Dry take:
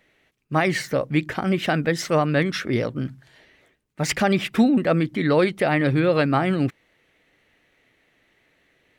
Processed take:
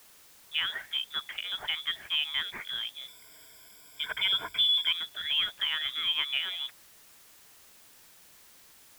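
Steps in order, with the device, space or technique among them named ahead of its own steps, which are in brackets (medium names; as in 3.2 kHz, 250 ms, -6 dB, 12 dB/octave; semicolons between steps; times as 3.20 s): scrambled radio voice (band-pass 360–2700 Hz; frequency inversion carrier 3.7 kHz; white noise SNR 21 dB); 3.08–4.91 s: rippled EQ curve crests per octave 1.7, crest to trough 15 dB; trim -8.5 dB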